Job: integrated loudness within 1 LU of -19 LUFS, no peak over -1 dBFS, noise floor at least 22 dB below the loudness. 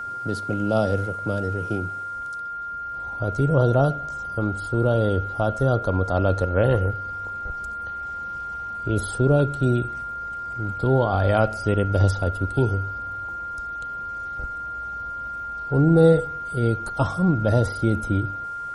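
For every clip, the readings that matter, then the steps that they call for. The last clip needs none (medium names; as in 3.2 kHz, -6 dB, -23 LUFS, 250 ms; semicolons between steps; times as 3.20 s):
tick rate 33 per s; steady tone 1.4 kHz; tone level -29 dBFS; loudness -24.0 LUFS; peak level -5.0 dBFS; loudness target -19.0 LUFS
-> de-click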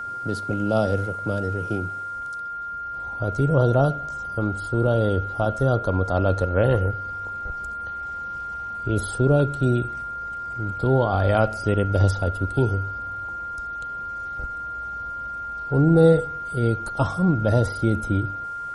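tick rate 0.16 per s; steady tone 1.4 kHz; tone level -29 dBFS
-> band-stop 1.4 kHz, Q 30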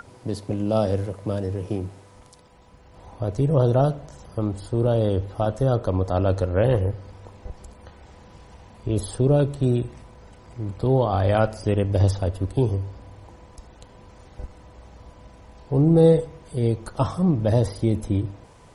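steady tone not found; loudness -23.0 LUFS; peak level -5.5 dBFS; loudness target -19.0 LUFS
-> trim +4 dB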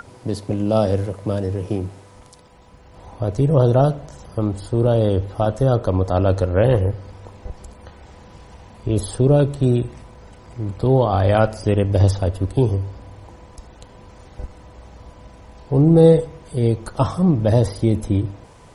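loudness -19.0 LUFS; peak level -1.5 dBFS; noise floor -46 dBFS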